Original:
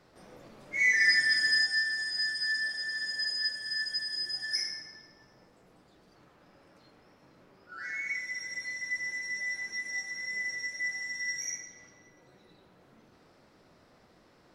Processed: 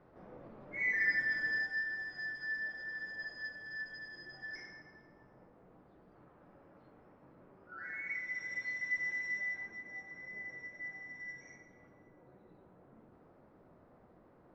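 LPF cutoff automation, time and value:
7.85 s 1300 Hz
8.51 s 2600 Hz
9.3 s 2600 Hz
9.79 s 1100 Hz

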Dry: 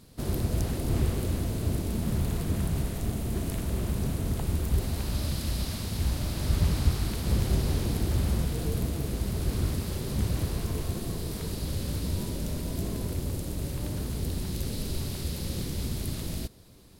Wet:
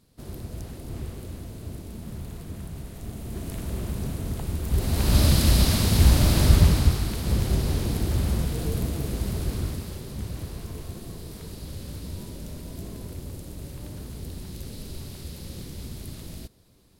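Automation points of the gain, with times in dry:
2.81 s -8.5 dB
3.66 s -1 dB
4.61 s -1 dB
5.17 s +11.5 dB
6.38 s +11.5 dB
7.06 s +2 dB
9.32 s +2 dB
10.13 s -5.5 dB

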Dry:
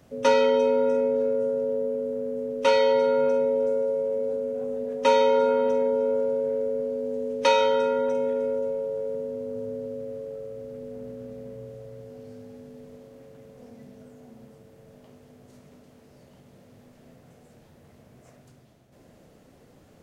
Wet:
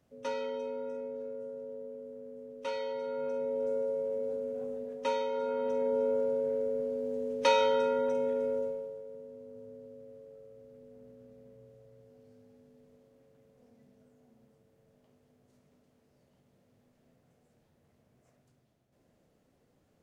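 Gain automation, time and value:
2.97 s -16 dB
3.75 s -7 dB
4.65 s -7 dB
5.29 s -14 dB
5.98 s -5 dB
8.61 s -5 dB
9.04 s -15.5 dB

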